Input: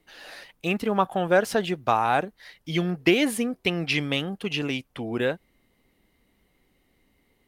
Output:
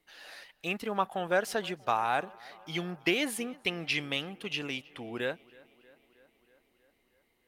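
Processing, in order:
low-shelf EQ 480 Hz −8 dB
tape delay 318 ms, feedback 72%, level −23 dB, low-pass 4,700 Hz
level −4.5 dB

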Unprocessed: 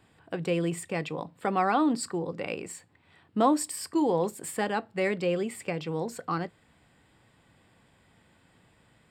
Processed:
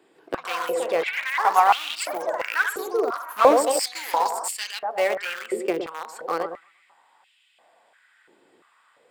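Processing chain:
on a send: bucket-brigade delay 114 ms, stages 1,024, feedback 43%, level −6 dB
on the sum: delay with pitch and tempo change per echo 148 ms, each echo +6 semitones, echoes 3, each echo −6 dB
0:03.71–0:04.79: high shelf with overshoot 3,900 Hz +6 dB, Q 3
in parallel at −7 dB: centre clipping without the shift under −22 dBFS
on the sum: high-pass on a step sequencer 2.9 Hz 370–2,800 Hz

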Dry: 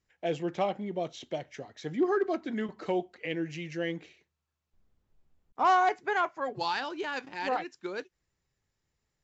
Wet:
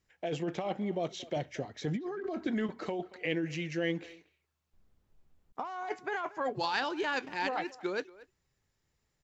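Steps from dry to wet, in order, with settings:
0:01.36–0:02.47: low-shelf EQ 310 Hz +6.5 dB
compressor whose output falls as the input rises −32 dBFS, ratio −1
far-end echo of a speakerphone 230 ms, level −19 dB
level −1 dB

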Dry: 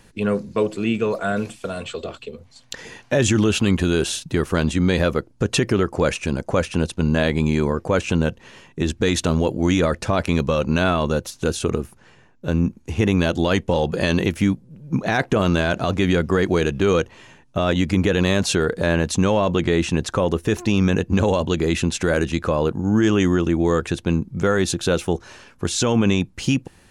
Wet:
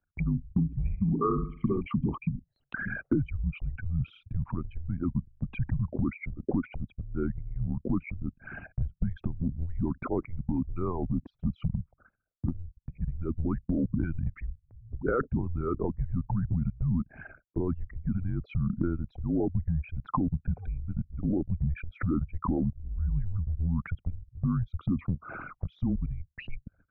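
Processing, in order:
spectral envelope exaggerated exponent 3
noise gate with hold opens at −39 dBFS
0:04.58–0:05.88: hum removal 48.99 Hz, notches 5
downward compressor 16 to 1, threshold −30 dBFS, peak gain reduction 17.5 dB
in parallel at −7 dB: asymmetric clip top −23 dBFS
on the sum: single-sideband voice off tune −260 Hz 250–2,100 Hz
0:00.72–0:01.81: flutter between parallel walls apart 11.6 metres, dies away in 0.47 s
level +4 dB

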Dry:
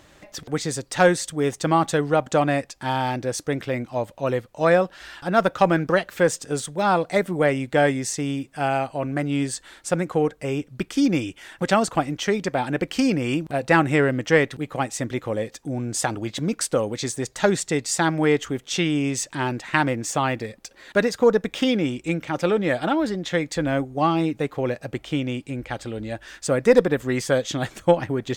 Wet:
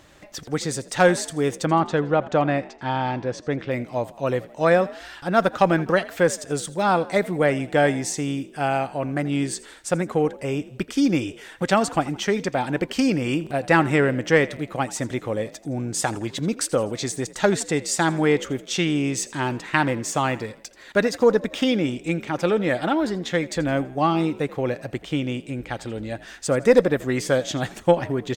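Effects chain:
0:01.65–0:03.71: high-frequency loss of the air 160 metres
on a send: echo with shifted repeats 83 ms, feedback 46%, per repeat +49 Hz, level −19 dB

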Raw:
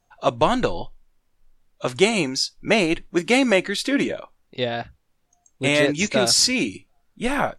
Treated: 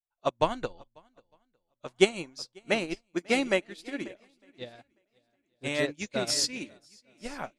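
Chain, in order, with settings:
feedback echo with a long and a short gap by turns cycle 905 ms, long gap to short 1.5 to 1, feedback 37%, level −12 dB
expander for the loud parts 2.5 to 1, over −35 dBFS
level −2.5 dB

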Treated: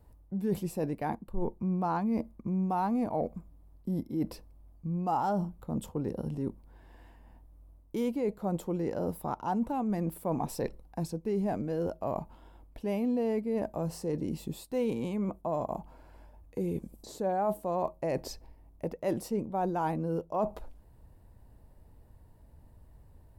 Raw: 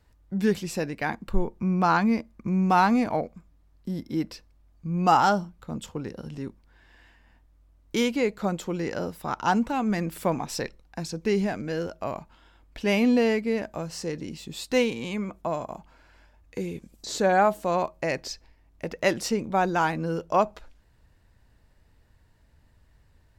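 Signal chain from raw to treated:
flat-topped bell 3,100 Hz −13 dB 2.8 octaves
reversed playback
downward compressor 4 to 1, threshold −34 dBFS, peak gain reduction 16 dB
reversed playback
level +4.5 dB

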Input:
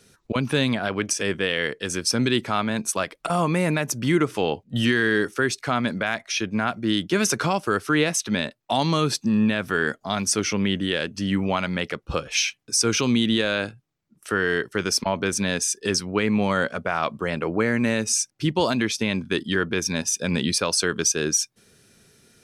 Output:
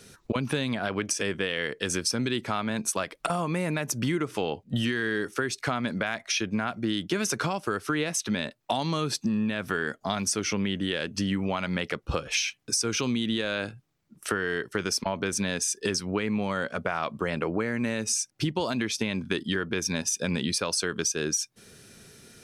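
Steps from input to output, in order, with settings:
downward compressor 6 to 1, threshold −30 dBFS, peak gain reduction 14 dB
level +5 dB

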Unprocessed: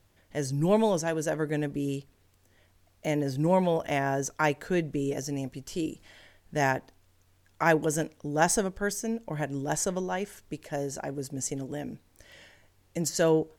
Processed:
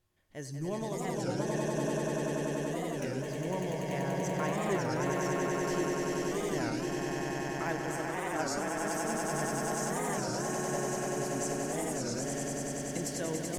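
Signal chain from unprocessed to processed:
camcorder AGC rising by 7.5 dB per second
parametric band 430 Hz −2 dB
tuned comb filter 360 Hz, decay 0.34 s, harmonics odd, mix 80%
echo that builds up and dies away 96 ms, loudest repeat 8, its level −4 dB
wow of a warped record 33 1/3 rpm, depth 250 cents

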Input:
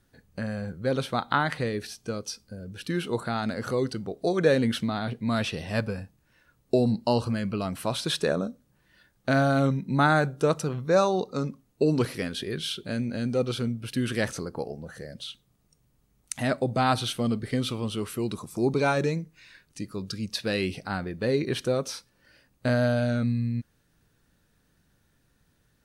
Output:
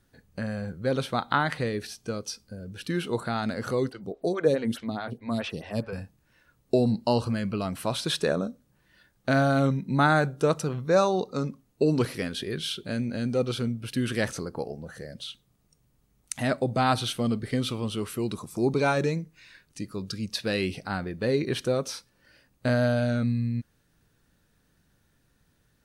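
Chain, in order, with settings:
0:03.89–0:05.93: phaser with staggered stages 4.7 Hz

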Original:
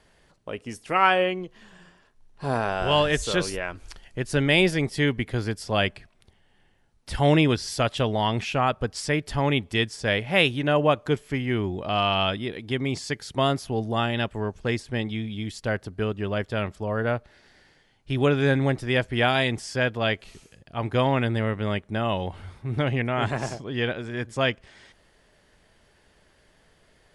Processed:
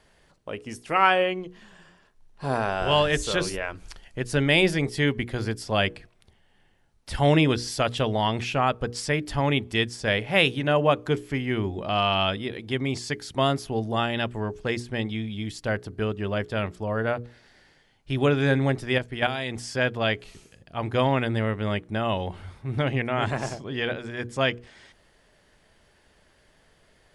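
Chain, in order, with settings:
0:18.98–0:19.56: output level in coarse steps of 10 dB
mains-hum notches 60/120/180/240/300/360/420/480 Hz

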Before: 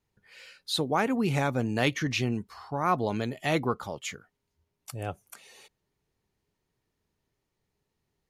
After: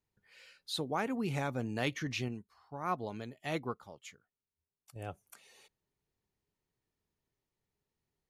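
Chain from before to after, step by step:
0:02.28–0:04.96: expander for the loud parts 1.5 to 1, over −44 dBFS
level −8 dB

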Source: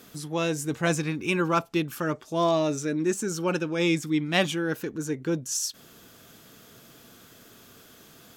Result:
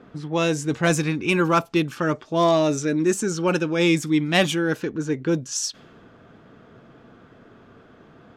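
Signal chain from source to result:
low-pass that shuts in the quiet parts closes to 1,300 Hz, open at −21.5 dBFS
soft clipping −11.5 dBFS, distortion −26 dB
level +5.5 dB

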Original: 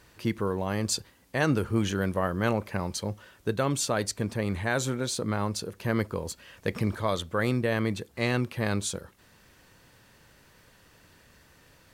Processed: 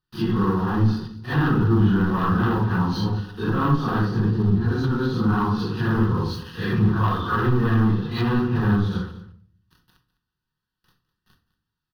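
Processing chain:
random phases in long frames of 200 ms
gain on a spectral selection 0:04.30–0:04.83, 500–3,900 Hz −14 dB
treble cut that deepens with the level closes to 1,300 Hz, closed at −26.5 dBFS
noise gate with hold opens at −46 dBFS
leveller curve on the samples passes 3
phaser with its sweep stopped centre 2,200 Hz, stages 6
single-tap delay 205 ms −16.5 dB
rectangular room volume 690 cubic metres, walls furnished, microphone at 1 metre
level +1.5 dB

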